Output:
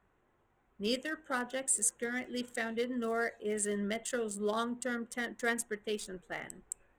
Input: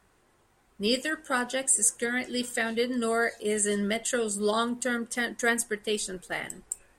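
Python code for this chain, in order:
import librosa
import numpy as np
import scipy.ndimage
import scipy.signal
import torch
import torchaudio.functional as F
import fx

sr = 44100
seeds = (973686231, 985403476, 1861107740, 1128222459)

y = fx.wiener(x, sr, points=9)
y = y * 10.0 ** (-6.5 / 20.0)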